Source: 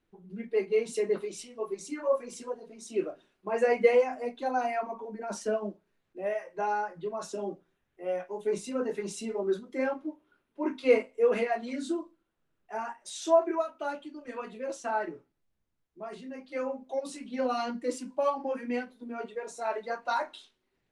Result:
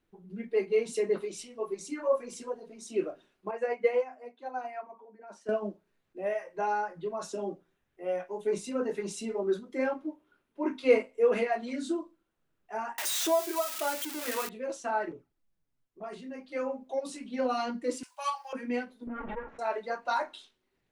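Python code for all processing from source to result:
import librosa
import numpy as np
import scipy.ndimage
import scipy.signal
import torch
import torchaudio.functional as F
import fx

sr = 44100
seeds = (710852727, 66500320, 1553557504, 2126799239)

y = fx.chain(x, sr, fx.highpass(hz=520.0, slope=6),
    fx.high_shelf(hz=3000.0, db=-10.5),
    fx.upward_expand(threshold_db=-38.0, expansion=1.5), at=(3.51, 5.49))
y = fx.chain(y, sr, fx.crossing_spikes(level_db=-25.5),
    fx.low_shelf(hz=230.0, db=-10.5),
    fx.band_squash(depth_pct=70), at=(12.98, 14.49))
y = fx.chain(y, sr, fx.low_shelf(hz=230.0, db=3.0),
    fx.env_flanger(rest_ms=8.6, full_db=-42.0), at=(15.11, 16.04))
y = fx.chain(y, sr, fx.highpass(hz=850.0, slope=24),
    fx.tilt_eq(slope=4.5), at=(18.03, 18.53))
y = fx.chain(y, sr, fx.lower_of_two(delay_ms=3.6),
    fx.lowpass(hz=2000.0, slope=24),
    fx.pre_swell(db_per_s=40.0), at=(19.07, 19.59))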